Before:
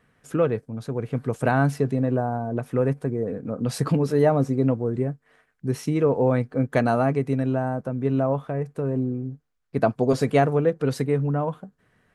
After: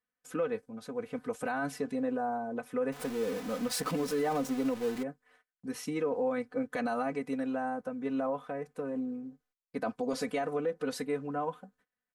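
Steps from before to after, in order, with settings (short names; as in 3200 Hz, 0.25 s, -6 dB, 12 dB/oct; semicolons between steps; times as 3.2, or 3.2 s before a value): 2.92–5.03 zero-crossing step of -30 dBFS; gate -56 dBFS, range -23 dB; low shelf 370 Hz -10.5 dB; comb 4 ms, depth 84%; limiter -17 dBFS, peak gain reduction 9.5 dB; gain -6 dB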